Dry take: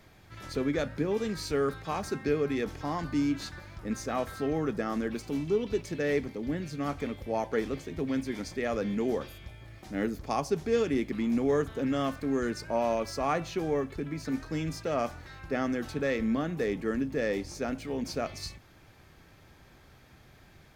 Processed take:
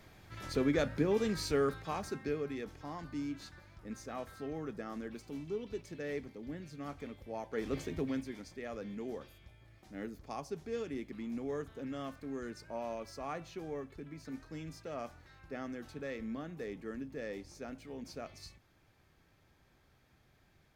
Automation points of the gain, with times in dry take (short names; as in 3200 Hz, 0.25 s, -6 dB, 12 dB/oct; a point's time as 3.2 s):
1.42 s -1 dB
2.67 s -11 dB
7.5 s -11 dB
7.81 s +1 dB
8.43 s -12 dB